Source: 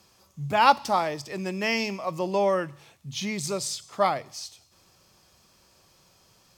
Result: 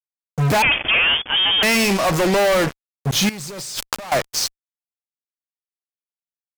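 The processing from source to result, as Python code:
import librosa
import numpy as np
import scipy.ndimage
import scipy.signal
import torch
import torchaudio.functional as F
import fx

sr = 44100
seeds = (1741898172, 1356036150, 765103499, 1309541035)

y = fx.fuzz(x, sr, gain_db=43.0, gate_db=-39.0)
y = fx.freq_invert(y, sr, carrier_hz=3400, at=(0.62, 1.63))
y = fx.over_compress(y, sr, threshold_db=-29.0, ratio=-1.0, at=(3.29, 4.12))
y = F.gain(torch.from_numpy(y), -1.5).numpy()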